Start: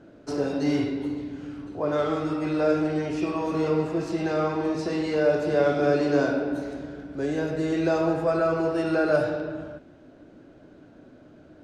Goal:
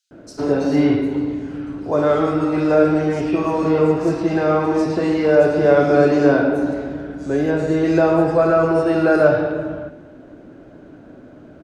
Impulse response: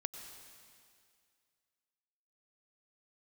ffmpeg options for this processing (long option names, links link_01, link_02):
-filter_complex "[0:a]acrossover=split=4400[link_01][link_02];[link_01]adelay=110[link_03];[link_03][link_02]amix=inputs=2:normalize=0,asplit=2[link_04][link_05];[1:a]atrim=start_sample=2205,asetrate=61740,aresample=44100,lowpass=2400[link_06];[link_05][link_06]afir=irnorm=-1:irlink=0,volume=-4.5dB[link_07];[link_04][link_07]amix=inputs=2:normalize=0,volume=6dB"